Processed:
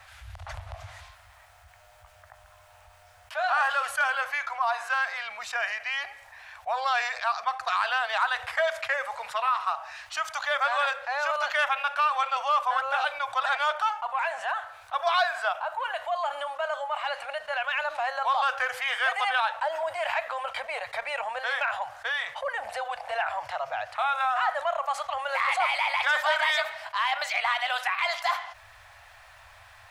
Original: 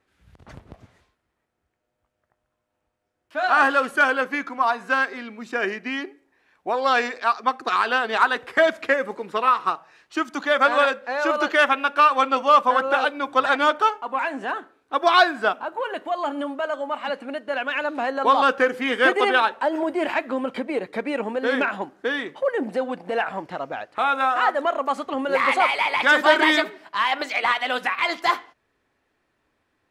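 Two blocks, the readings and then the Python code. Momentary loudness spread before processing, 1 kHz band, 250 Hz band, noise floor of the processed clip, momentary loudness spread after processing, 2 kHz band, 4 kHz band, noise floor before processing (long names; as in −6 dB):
11 LU, −5.5 dB, below −40 dB, −55 dBFS, 8 LU, −5.0 dB, −4.0 dB, −77 dBFS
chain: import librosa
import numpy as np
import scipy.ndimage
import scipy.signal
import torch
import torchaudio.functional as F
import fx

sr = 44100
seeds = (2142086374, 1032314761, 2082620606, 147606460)

y = scipy.signal.sosfilt(scipy.signal.ellip(3, 1.0, 40, [100.0, 670.0], 'bandstop', fs=sr, output='sos'), x)
y = fx.env_flatten(y, sr, amount_pct=50)
y = y * 10.0 ** (-8.5 / 20.0)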